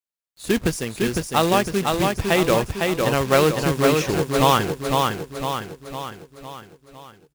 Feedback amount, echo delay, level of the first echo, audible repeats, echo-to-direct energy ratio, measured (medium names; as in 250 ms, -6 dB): 52%, 506 ms, -3.5 dB, 6, -2.0 dB